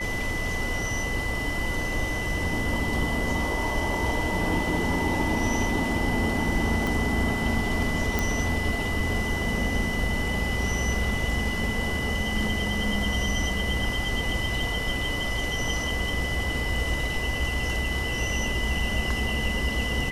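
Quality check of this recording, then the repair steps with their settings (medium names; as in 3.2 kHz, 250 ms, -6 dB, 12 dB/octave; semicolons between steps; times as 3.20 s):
whine 2 kHz -30 dBFS
6.87 s: pop
8.19 s: pop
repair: de-click; band-stop 2 kHz, Q 30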